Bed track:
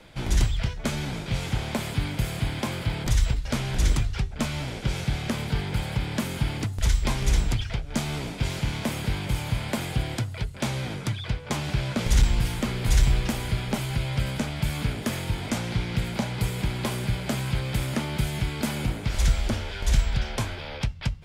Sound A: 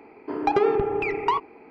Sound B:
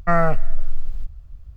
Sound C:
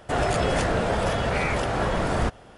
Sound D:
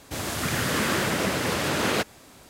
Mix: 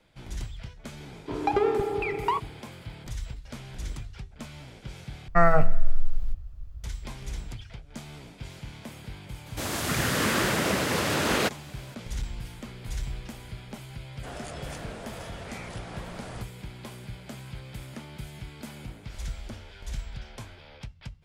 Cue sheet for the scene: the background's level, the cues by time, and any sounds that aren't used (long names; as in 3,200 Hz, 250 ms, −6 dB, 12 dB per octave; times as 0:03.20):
bed track −13.5 dB
0:01.00: mix in A −3.5 dB
0:05.28: overwrite with B −1 dB + hum removal 82.69 Hz, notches 39
0:09.46: mix in D −0.5 dB
0:14.14: mix in C −17.5 dB + high-shelf EQ 4,100 Hz +9 dB